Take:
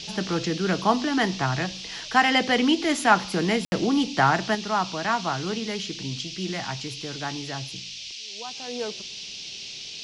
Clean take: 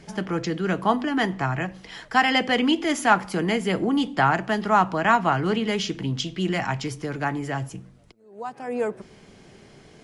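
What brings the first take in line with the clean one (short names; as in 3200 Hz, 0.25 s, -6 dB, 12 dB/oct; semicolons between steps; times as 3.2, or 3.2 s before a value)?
room tone fill 3.65–3.72; noise print and reduce 12 dB; gain 0 dB, from 4.55 s +6 dB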